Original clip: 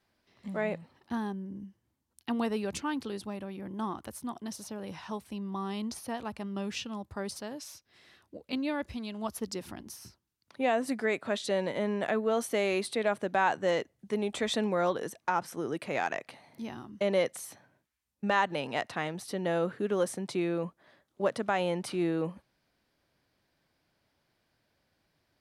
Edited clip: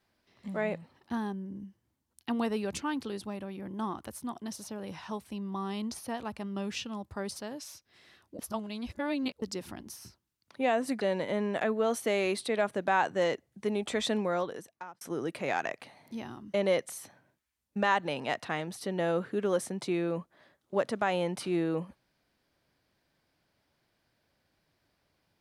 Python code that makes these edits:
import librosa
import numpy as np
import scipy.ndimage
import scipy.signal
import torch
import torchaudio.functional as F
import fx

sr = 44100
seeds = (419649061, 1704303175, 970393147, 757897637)

y = fx.edit(x, sr, fx.reverse_span(start_s=8.39, length_s=1.03),
    fx.cut(start_s=11.01, length_s=0.47),
    fx.fade_out_span(start_s=14.61, length_s=0.87), tone=tone)